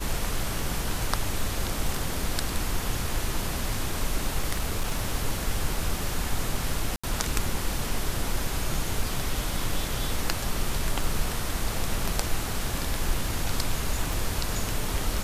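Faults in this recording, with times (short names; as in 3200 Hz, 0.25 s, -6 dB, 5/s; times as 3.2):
4.52–5.04 clipped -21 dBFS
6.96–7.04 gap 75 ms
14.13 pop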